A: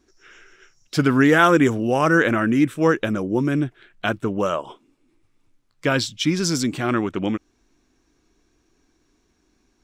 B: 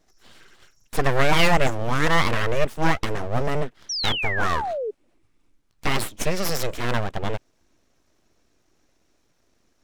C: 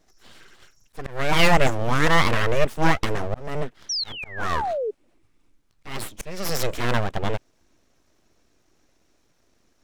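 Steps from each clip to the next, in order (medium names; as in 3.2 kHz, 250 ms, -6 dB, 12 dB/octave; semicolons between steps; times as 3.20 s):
full-wave rectifier; painted sound fall, 3.89–4.91 s, 400–6000 Hz -27 dBFS
slow attack 388 ms; trim +1.5 dB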